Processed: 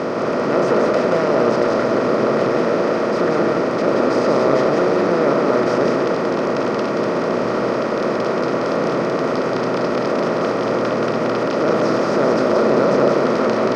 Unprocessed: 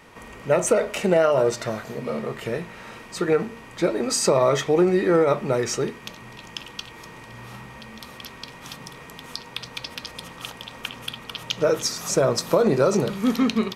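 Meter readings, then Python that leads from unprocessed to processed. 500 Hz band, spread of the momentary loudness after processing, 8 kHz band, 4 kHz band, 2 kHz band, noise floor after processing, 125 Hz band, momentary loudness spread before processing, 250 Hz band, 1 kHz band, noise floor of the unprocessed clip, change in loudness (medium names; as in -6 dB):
+7.0 dB, 4 LU, no reading, -1.0 dB, +8.0 dB, -21 dBFS, +3.5 dB, 21 LU, +7.5 dB, +10.0 dB, -43 dBFS, +5.0 dB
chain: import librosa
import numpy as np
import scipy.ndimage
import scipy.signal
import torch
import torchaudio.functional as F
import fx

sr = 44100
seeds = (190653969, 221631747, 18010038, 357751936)

y = fx.bin_compress(x, sr, power=0.2)
y = fx.highpass(y, sr, hz=160.0, slope=6)
y = fx.peak_eq(y, sr, hz=3200.0, db=-10.5, octaves=0.46)
y = fx.notch(y, sr, hz=2800.0, q=30.0)
y = fx.hpss(y, sr, part='harmonic', gain_db=-8)
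y = fx.transient(y, sr, attack_db=-4, sustain_db=4)
y = fx.quant_companded(y, sr, bits=8)
y = fx.air_absorb(y, sr, metres=290.0)
y = y + 10.0 ** (-3.0 / 20.0) * np.pad(y, (int(178 * sr / 1000.0), 0))[:len(y)]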